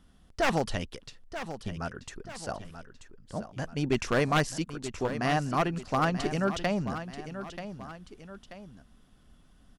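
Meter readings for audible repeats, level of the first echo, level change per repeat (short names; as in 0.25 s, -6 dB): 2, -11.0 dB, -7.0 dB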